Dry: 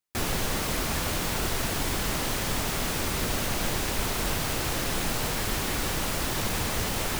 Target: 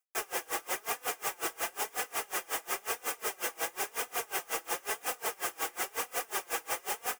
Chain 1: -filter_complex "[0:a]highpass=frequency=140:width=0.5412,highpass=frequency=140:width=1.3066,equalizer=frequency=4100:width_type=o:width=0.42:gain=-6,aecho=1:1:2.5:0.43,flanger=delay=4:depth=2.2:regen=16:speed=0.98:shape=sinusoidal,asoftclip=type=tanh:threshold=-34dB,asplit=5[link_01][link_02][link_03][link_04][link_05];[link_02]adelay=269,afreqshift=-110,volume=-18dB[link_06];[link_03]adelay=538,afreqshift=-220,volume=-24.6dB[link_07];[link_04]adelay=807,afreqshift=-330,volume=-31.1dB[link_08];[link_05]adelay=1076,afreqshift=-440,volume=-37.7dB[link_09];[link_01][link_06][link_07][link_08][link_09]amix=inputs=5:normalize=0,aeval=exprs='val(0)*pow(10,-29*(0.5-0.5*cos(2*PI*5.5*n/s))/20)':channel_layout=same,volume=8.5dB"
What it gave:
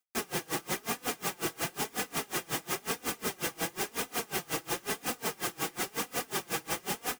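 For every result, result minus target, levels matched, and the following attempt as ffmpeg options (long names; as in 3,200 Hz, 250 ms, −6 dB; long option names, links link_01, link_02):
125 Hz band +17.5 dB; 4,000 Hz band +2.5 dB
-filter_complex "[0:a]highpass=frequency=450:width=0.5412,highpass=frequency=450:width=1.3066,equalizer=frequency=4100:width_type=o:width=0.42:gain=-6,aecho=1:1:2.5:0.43,flanger=delay=4:depth=2.2:regen=16:speed=0.98:shape=sinusoidal,asoftclip=type=tanh:threshold=-34dB,asplit=5[link_01][link_02][link_03][link_04][link_05];[link_02]adelay=269,afreqshift=-110,volume=-18dB[link_06];[link_03]adelay=538,afreqshift=-220,volume=-24.6dB[link_07];[link_04]adelay=807,afreqshift=-330,volume=-31.1dB[link_08];[link_05]adelay=1076,afreqshift=-440,volume=-37.7dB[link_09];[link_01][link_06][link_07][link_08][link_09]amix=inputs=5:normalize=0,aeval=exprs='val(0)*pow(10,-29*(0.5-0.5*cos(2*PI*5.5*n/s))/20)':channel_layout=same,volume=8.5dB"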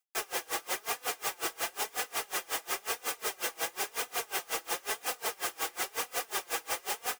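4,000 Hz band +3.0 dB
-filter_complex "[0:a]highpass=frequency=450:width=0.5412,highpass=frequency=450:width=1.3066,equalizer=frequency=4100:width_type=o:width=0.42:gain=-17.5,aecho=1:1:2.5:0.43,flanger=delay=4:depth=2.2:regen=16:speed=0.98:shape=sinusoidal,asoftclip=type=tanh:threshold=-34dB,asplit=5[link_01][link_02][link_03][link_04][link_05];[link_02]adelay=269,afreqshift=-110,volume=-18dB[link_06];[link_03]adelay=538,afreqshift=-220,volume=-24.6dB[link_07];[link_04]adelay=807,afreqshift=-330,volume=-31.1dB[link_08];[link_05]adelay=1076,afreqshift=-440,volume=-37.7dB[link_09];[link_01][link_06][link_07][link_08][link_09]amix=inputs=5:normalize=0,aeval=exprs='val(0)*pow(10,-29*(0.5-0.5*cos(2*PI*5.5*n/s))/20)':channel_layout=same,volume=8.5dB"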